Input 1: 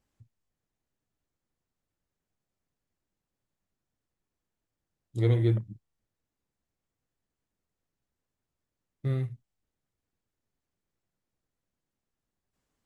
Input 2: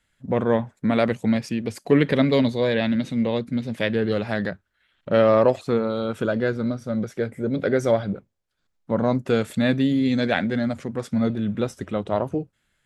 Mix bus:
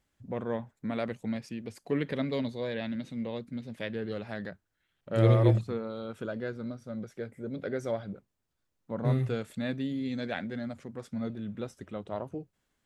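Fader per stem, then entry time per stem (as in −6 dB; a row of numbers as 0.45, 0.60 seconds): +1.5, −12.5 decibels; 0.00, 0.00 seconds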